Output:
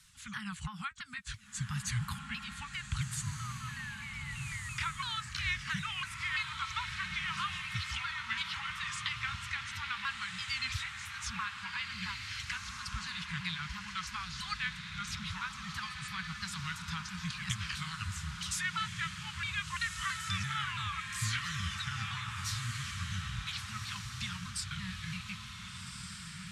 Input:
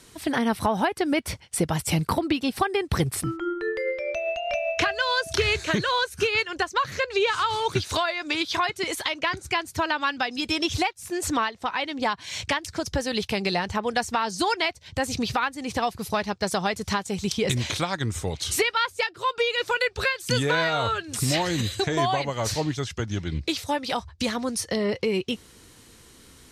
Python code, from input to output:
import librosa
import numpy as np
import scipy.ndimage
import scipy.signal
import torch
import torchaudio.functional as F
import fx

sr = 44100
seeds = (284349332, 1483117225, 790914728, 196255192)

y = fx.pitch_ramps(x, sr, semitones=-6.0, every_ms=335)
y = scipy.signal.sosfilt(scipy.signal.cheby2(4, 50, [300.0, 670.0], 'bandstop', fs=sr, output='sos'), y)
y = fx.echo_diffused(y, sr, ms=1523, feedback_pct=47, wet_db=-4.5)
y = y * 10.0 ** (-8.5 / 20.0)